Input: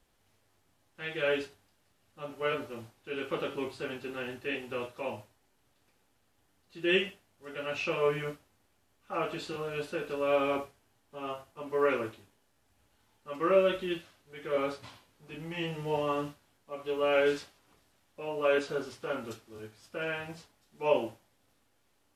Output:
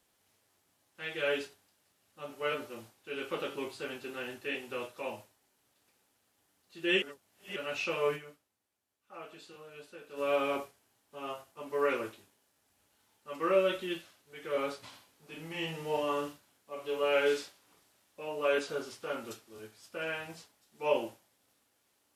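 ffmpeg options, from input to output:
-filter_complex "[0:a]asettb=1/sr,asplit=3[s0][s1][s2];[s0]atrim=end=14.884[s3];[s1]atrim=start=14.88:end=18.23,asetpts=PTS-STARTPTS,afade=t=in:d=0.004:c=qsin,afade=t=out:st=3.346:d=0.004:c=qsin,asplit=2[s4][s5];[s5]adelay=44,volume=0.501[s6];[s4][s6]amix=inputs=2:normalize=0,atrim=end_sample=147735[s7];[s2]atrim=start=18.226[s8];[s3][s7]acrossfade=d=0.004:c1=hsin:c2=qsin[s9];[s9][s8]acrossfade=d=0.004:c1=qsin:c2=hsin,asplit=5[s10][s11][s12][s13][s14];[s10]atrim=end=7.022[s15];[s11]atrim=start=7.018:end=7.562,asetpts=PTS-STARTPTS,areverse[s16];[s12]atrim=start=7.558:end=8.42,asetpts=PTS-STARTPTS,afade=t=out:st=0.592:d=0.27:c=exp:silence=0.251189[s17];[s13]atrim=start=8.42:end=9.92,asetpts=PTS-STARTPTS,volume=0.251[s18];[s14]atrim=start=9.92,asetpts=PTS-STARTPTS,afade=t=in:d=0.27:c=exp:silence=0.251189[s19];[s15][s16]acrossfade=d=0.004:c1=hsin:c2=hsin[s20];[s17][s18][s19]concat=n=3:v=0:a=1[s21];[s20][s21]acrossfade=d=0.004:c1=hsin:c2=hsin,highpass=f=190:p=1,highshelf=f=4800:g=7,volume=0.794"

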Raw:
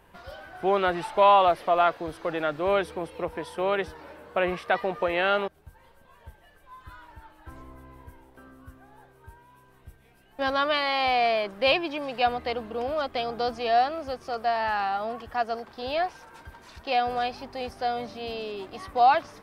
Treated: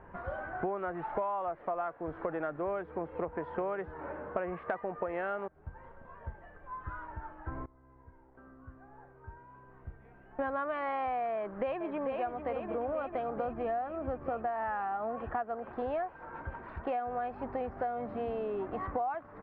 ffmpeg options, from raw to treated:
-filter_complex "[0:a]asplit=2[s0][s1];[s1]afade=t=in:st=11.36:d=0.01,afade=t=out:st=12.17:d=0.01,aecho=0:1:440|880|1320|1760|2200|2640|3080|3520|3960|4400|4840:0.421697|0.295188|0.206631|0.144642|0.101249|0.0708745|0.0496122|0.0347285|0.02431|0.017017|0.0119119[s2];[s0][s2]amix=inputs=2:normalize=0,asettb=1/sr,asplit=3[s3][s4][s5];[s3]atrim=end=13.454[s6];[s4]atrim=start=13.45:end=14.47,asetpts=PTS-STARTPTS,afade=t=in:d=0.004:c=qsin,afade=t=out:st=1.016:d=0.004:c=qsin,bass=f=250:g=7,treble=f=4000:g=-5[s7];[s5]atrim=start=14.466[s8];[s6][s7]acrossfade=d=0.004:c1=hsin:c2=qsin[s9];[s9][s8]acrossfade=d=0.004:c1=qsin:c2=hsin,asplit=2[s10][s11];[s10]atrim=end=7.66,asetpts=PTS-STARTPTS,afade=t=out:st=7.656:d=0.004:c=hsin:silence=0.0749894[s12];[s11]atrim=start=7.66,asetpts=PTS-STARTPTS,afade=t=in:d=3.05:silence=0.0749894[s13];[s12][s13]concat=n=2:v=0:a=1,lowpass=f=1700:w=0.5412,lowpass=f=1700:w=1.3066,acompressor=threshold=0.0158:ratio=16,volume=1.78"

